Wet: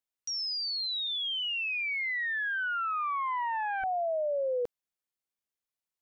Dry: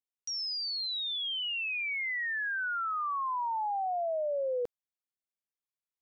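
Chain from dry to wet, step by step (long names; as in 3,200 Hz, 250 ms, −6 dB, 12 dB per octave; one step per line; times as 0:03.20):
0:01.07–0:03.84: highs frequency-modulated by the lows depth 0.32 ms
level +1.5 dB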